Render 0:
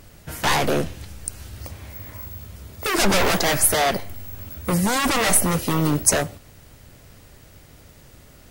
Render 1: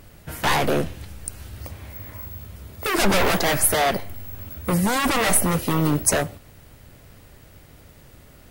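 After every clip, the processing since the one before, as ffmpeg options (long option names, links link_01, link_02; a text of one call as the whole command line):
ffmpeg -i in.wav -af "equalizer=frequency=6200:width_type=o:width=1.2:gain=-4.5" out.wav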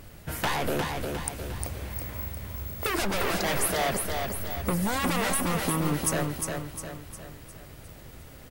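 ffmpeg -i in.wav -filter_complex "[0:a]acompressor=threshold=-25dB:ratio=6,asplit=2[link_01][link_02];[link_02]aecho=0:1:355|710|1065|1420|1775|2130:0.596|0.28|0.132|0.0618|0.0291|0.0137[link_03];[link_01][link_03]amix=inputs=2:normalize=0" out.wav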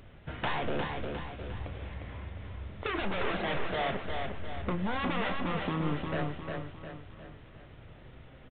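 ffmpeg -i in.wav -filter_complex "[0:a]flanger=delay=7.5:depth=3.6:regen=85:speed=0.24:shape=triangular,asplit=2[link_01][link_02];[link_02]adelay=32,volume=-12.5dB[link_03];[link_01][link_03]amix=inputs=2:normalize=0" -ar 8000 -c:a adpcm_g726 -b:a 40k out.wav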